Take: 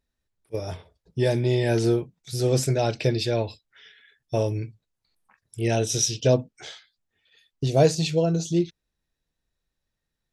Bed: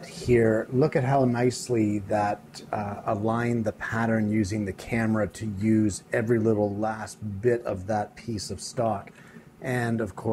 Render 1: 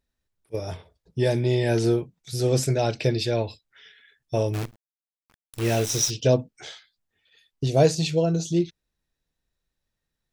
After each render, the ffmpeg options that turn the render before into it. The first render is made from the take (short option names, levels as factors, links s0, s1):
-filter_complex "[0:a]asplit=3[s0][s1][s2];[s0]afade=t=out:st=4.53:d=0.02[s3];[s1]acrusher=bits=6:dc=4:mix=0:aa=0.000001,afade=t=in:st=4.53:d=0.02,afade=t=out:st=6.09:d=0.02[s4];[s2]afade=t=in:st=6.09:d=0.02[s5];[s3][s4][s5]amix=inputs=3:normalize=0"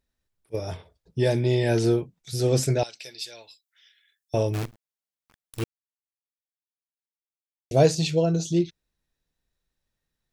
-filter_complex "[0:a]asettb=1/sr,asplit=3[s0][s1][s2];[s0]atrim=end=2.834[s3];[s1]atrim=start=2.83:end=4.34,asetpts=PTS-STARTPTS,afade=t=in:d=0.004:c=qsin,afade=t=out:st=1.506:d=0.004:c=qsin,aderivative[s4];[s2]atrim=start=4.336[s5];[s3][s4]acrossfade=d=0.004:c1=hsin:c2=qsin[s6];[s6][s5]acrossfade=d=0.004:c1=qsin:c2=hsin,asplit=3[s7][s8][s9];[s7]atrim=end=5.64,asetpts=PTS-STARTPTS,afade=t=out:st=5.636:d=0.004:c=hsin[s10];[s8]atrim=start=5.64:end=7.71,asetpts=PTS-STARTPTS,volume=0[s11];[s9]atrim=start=7.71,asetpts=PTS-STARTPTS,afade=t=in:d=0.004:c=hsin[s12];[s10][s11][s12]concat=n=3:v=0:a=1"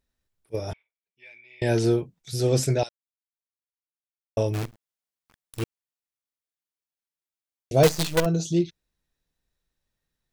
-filter_complex "[0:a]asettb=1/sr,asplit=3[s0][s1][s2];[s0]atrim=end=0.734[s3];[s1]atrim=start=0.73:end=1.62,asetpts=PTS-STARTPTS,afade=t=in:d=0.004:c=qsin,afade=t=out:st=0.886:d=0.004:c=qsin,bandpass=f=2300:t=q:w=18[s4];[s2]atrim=start=1.616[s5];[s3][s4]acrossfade=d=0.004:c1=hsin:c2=qsin[s6];[s6][s5]acrossfade=d=0.004:c1=qsin:c2=hsin,asettb=1/sr,asplit=3[s7][s8][s9];[s7]atrim=end=7.834[s10];[s8]atrim=start=7.83:end=8.26,asetpts=PTS-STARTPTS,afade=t=in:d=0.004:c=qsin,afade=t=out:st=0.426:d=0.004:c=qsin,acrusher=bits=4:dc=4:mix=0:aa=0.000001[s11];[s9]atrim=start=8.256[s12];[s10][s11]acrossfade=d=0.004:c1=hsin:c2=qsin[s13];[s13][s12]acrossfade=d=0.004:c1=qsin:c2=hsin,asplit=3[s14][s15][s16];[s14]atrim=end=2.89,asetpts=PTS-STARTPTS,afade=t=out:st=2.886:d=0.004:c=hsin[s17];[s15]atrim=start=2.89:end=4.37,asetpts=PTS-STARTPTS,volume=0[s18];[s16]atrim=start=4.37,asetpts=PTS-STARTPTS,afade=t=in:d=0.004:c=hsin[s19];[s17][s18][s19]concat=n=3:v=0:a=1"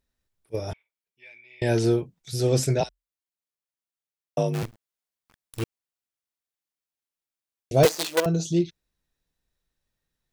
-filter_complex "[0:a]asettb=1/sr,asplit=3[s0][s1][s2];[s0]atrim=end=2.804[s3];[s1]atrim=start=2.8:end=4.63,asetpts=PTS-STARTPTS,afade=t=in:d=0.004:c=qsin,afade=t=out:st=1.826:d=0.004:c=qsin,afreqshift=43[s4];[s2]atrim=start=4.626[s5];[s3][s4]acrossfade=d=0.004:c1=hsin:c2=qsin[s6];[s6][s5]acrossfade=d=0.004:c1=qsin:c2=hsin,asettb=1/sr,asplit=3[s7][s8][s9];[s7]atrim=end=7.854[s10];[s8]atrim=start=7.85:end=8.26,asetpts=PTS-STARTPTS,afade=t=in:d=0.004:c=qsin,afade=t=out:st=0.406:d=0.004:c=qsin,highpass=f=280:w=0.5412,highpass=f=280:w=1.3066[s11];[s9]atrim=start=8.256[s12];[s10][s11]acrossfade=d=0.004:c1=hsin:c2=qsin[s13];[s13][s12]acrossfade=d=0.004:c1=qsin:c2=hsin"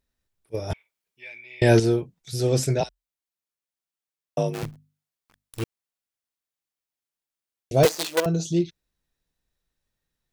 -filter_complex "[0:a]asettb=1/sr,asplit=3[s0][s1][s2];[s0]atrim=end=0.704[s3];[s1]atrim=start=0.7:end=1.8,asetpts=PTS-STARTPTS,afade=t=in:d=0.004:c=qsin,afade=t=out:st=1.096:d=0.004:c=qsin,acontrast=84[s4];[s2]atrim=start=1.796[s5];[s3][s4]acrossfade=d=0.004:c1=hsin:c2=qsin[s6];[s6][s5]acrossfade=d=0.004:c1=qsin:c2=hsin,asettb=1/sr,asplit=3[s7][s8][s9];[s7]atrim=end=4.484[s10];[s8]atrim=start=4.48:end=5.6,asetpts=PTS-STARTPTS,afade=t=in:d=0.004:c=qsin,afade=t=out:st=1.116:d=0.004:c=qsin,bandreject=f=50:t=h:w=6,bandreject=f=100:t=h:w=6,bandreject=f=150:t=h:w=6,bandreject=f=200:t=h:w=6,bandreject=f=250:t=h:w=6[s11];[s9]atrim=start=5.596[s12];[s10][s11]acrossfade=d=0.004:c1=hsin:c2=qsin[s13];[s13][s12]acrossfade=d=0.004:c1=qsin:c2=hsin"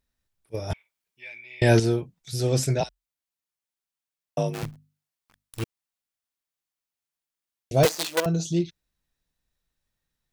-af "equalizer=f=410:t=o:w=0.96:g=-3.5"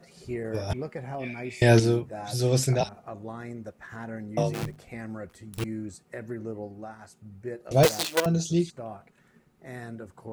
-filter_complex "[1:a]volume=0.224[s0];[0:a][s0]amix=inputs=2:normalize=0"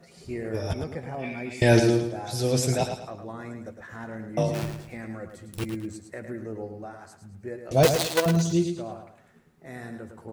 -filter_complex "[0:a]asplit=2[s0][s1];[s1]adelay=12,volume=0.251[s2];[s0][s2]amix=inputs=2:normalize=0,aecho=1:1:108|216|324|432:0.422|0.152|0.0547|0.0197"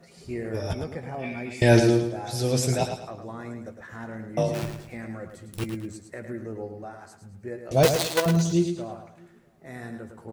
-filter_complex "[0:a]asplit=2[s0][s1];[s1]adelay=17,volume=0.2[s2];[s0][s2]amix=inputs=2:normalize=0,asplit=2[s3][s4];[s4]adelay=641.4,volume=0.0316,highshelf=f=4000:g=-14.4[s5];[s3][s5]amix=inputs=2:normalize=0"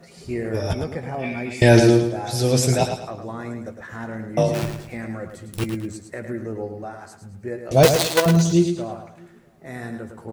-af "volume=1.88,alimiter=limit=0.794:level=0:latency=1"